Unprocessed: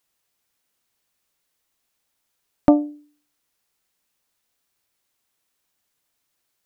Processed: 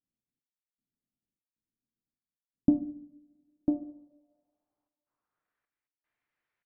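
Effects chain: trance gate "xx..xxx.x" 77 bpm; on a send: delay 998 ms -8 dB; on the sum: two-slope reverb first 0.71 s, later 2.3 s, from -27 dB, DRR 9.5 dB; low-pass sweep 240 Hz -> 2 kHz, 3.25–5.80 s; trim -9 dB

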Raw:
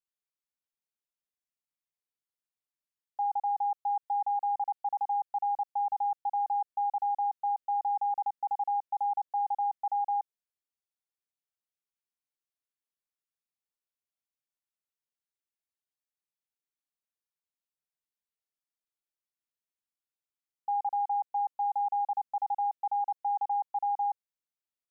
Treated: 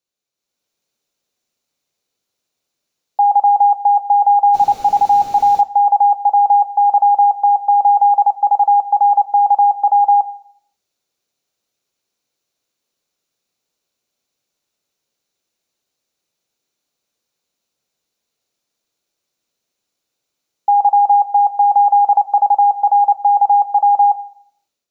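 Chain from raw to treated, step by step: level rider gain up to 9 dB; 4.53–5.60 s: added noise pink -48 dBFS; reverberation RT60 0.70 s, pre-delay 3 ms, DRR 13 dB; 22.15–22.82 s: three bands compressed up and down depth 70%; trim +7 dB

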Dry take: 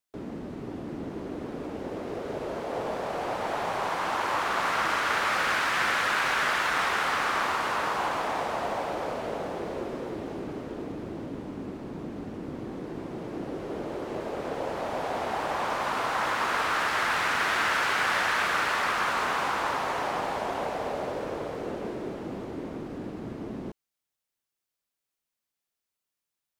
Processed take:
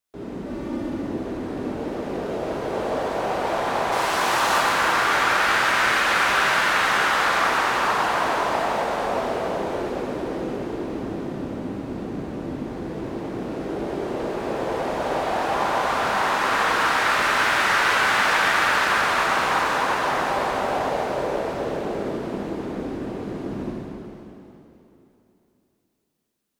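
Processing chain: 0.46–0.89 s: comb 3.4 ms, depth 92%; 3.92–4.58 s: treble shelf 3.6 kHz +10.5 dB; plate-style reverb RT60 3.1 s, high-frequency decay 0.95×, DRR -5.5 dB

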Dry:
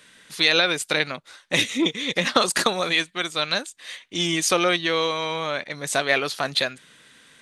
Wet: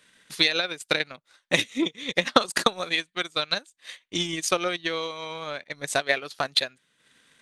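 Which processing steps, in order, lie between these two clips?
transient shaper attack +10 dB, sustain -9 dB; trim -8 dB

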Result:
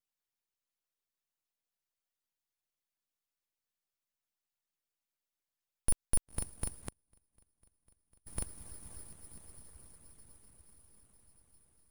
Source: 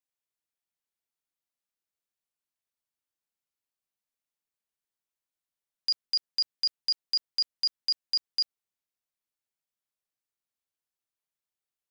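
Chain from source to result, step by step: peak limiter -25 dBFS, peak gain reduction 5 dB; echo that smears into a reverb 548 ms, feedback 66%, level -7 dB; 6.80–8.27 s: inverted gate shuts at -38 dBFS, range -31 dB; full-wave rectifier; harmonic-percussive split harmonic -15 dB; trim +5.5 dB

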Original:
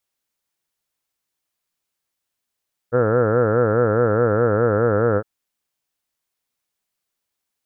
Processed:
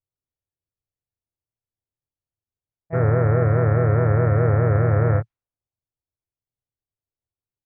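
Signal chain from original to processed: level-controlled noise filter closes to 490 Hz, open at -14 dBFS; resonant low shelf 140 Hz +7 dB, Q 3; harmony voices -4 st -11 dB, +5 st -7 dB; trim -6 dB

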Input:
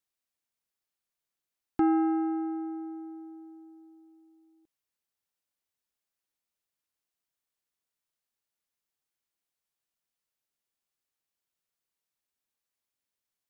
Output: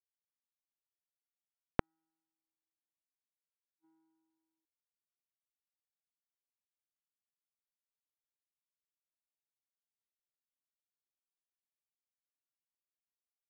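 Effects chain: inverted gate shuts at -47 dBFS, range -38 dB; power-law waveshaper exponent 2; trim +13 dB

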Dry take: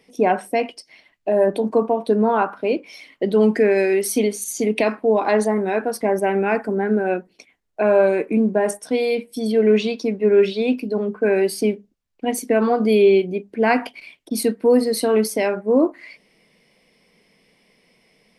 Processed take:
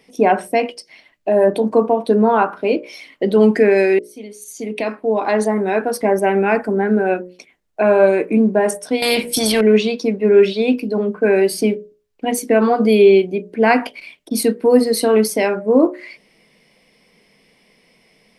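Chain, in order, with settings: 3.99–5.83 s: fade in; hum notches 60/120/180/240/300/360/420/480/540/600 Hz; 9.02–9.61 s: spectrum-flattening compressor 2:1; trim +4 dB

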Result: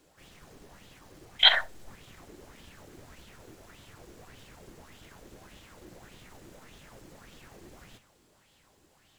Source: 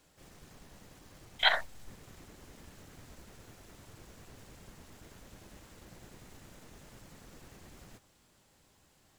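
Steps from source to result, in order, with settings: flutter echo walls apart 11.2 m, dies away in 0.23 s; sweeping bell 1.7 Hz 330–3400 Hz +11 dB

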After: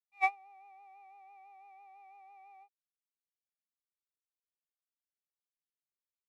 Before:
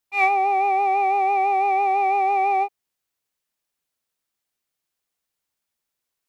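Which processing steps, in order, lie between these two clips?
high-pass 590 Hz 24 dB/octave; gate -15 dBFS, range -36 dB

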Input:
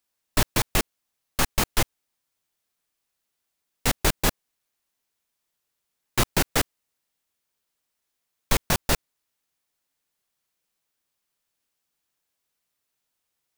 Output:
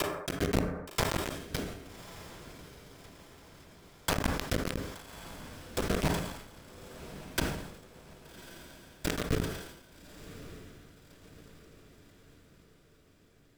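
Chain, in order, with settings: slices played last to first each 157 ms, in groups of 6; hum notches 50/100 Hz; low-pass that closes with the level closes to 890 Hz, closed at -21 dBFS; rippled EQ curve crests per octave 1.7, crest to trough 15 dB; compression 3:1, threshold -26 dBFS, peak gain reduction 8 dB; whisper effect; bit crusher 4-bit; rotary cabinet horn 0.9 Hz; echo that smears into a reverb 1184 ms, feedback 51%, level -12 dB; reverberation RT60 1.0 s, pre-delay 3 ms, DRR 17.5 dB; decay stretcher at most 62 dB/s; trim -1.5 dB

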